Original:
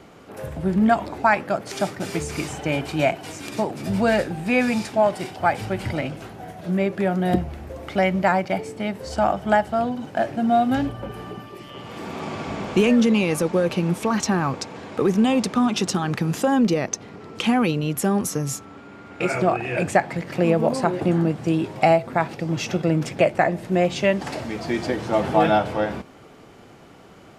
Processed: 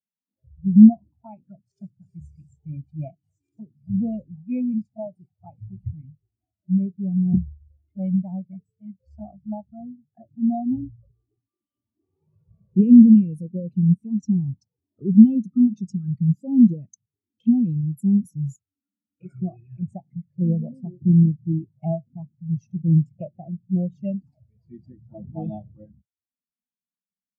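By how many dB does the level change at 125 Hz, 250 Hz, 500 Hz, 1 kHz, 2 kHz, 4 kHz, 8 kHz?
+3.0 dB, +4.0 dB, −18.0 dB, below −20 dB, below −40 dB, below −35 dB, below −25 dB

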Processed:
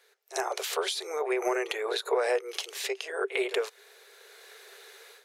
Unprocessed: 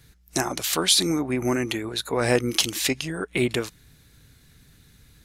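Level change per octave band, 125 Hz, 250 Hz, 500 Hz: below −40 dB, −14.5 dB, −2.0 dB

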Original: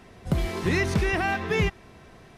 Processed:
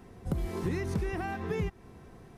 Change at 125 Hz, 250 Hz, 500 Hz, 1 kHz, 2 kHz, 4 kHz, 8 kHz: −6.5, −6.5, −7.5, −9.0, −14.5, −15.5, −11.0 decibels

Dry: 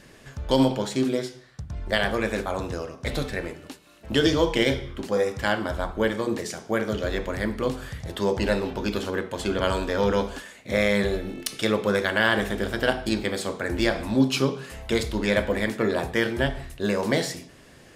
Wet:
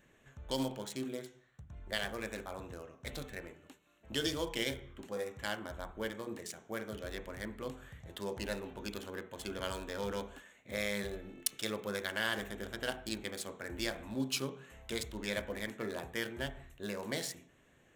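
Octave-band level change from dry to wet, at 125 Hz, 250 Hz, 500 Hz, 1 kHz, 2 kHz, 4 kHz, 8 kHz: −16.0, −16.0, −15.5, −15.0, −13.0, −10.0, −6.0 decibels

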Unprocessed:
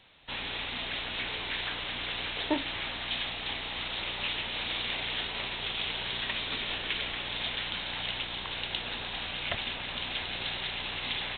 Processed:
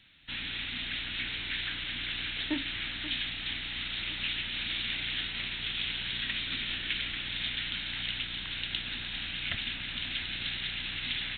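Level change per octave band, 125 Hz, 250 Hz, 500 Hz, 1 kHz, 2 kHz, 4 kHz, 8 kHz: 0.0 dB, −1.5 dB, −12.0 dB, −10.0 dB, 0.0 dB, 0.0 dB, can't be measured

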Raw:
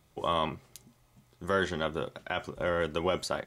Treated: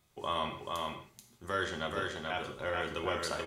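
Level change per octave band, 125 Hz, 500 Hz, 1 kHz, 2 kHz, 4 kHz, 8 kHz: −5.5, −5.5, −2.5, −1.5, −1.0, −1.0 decibels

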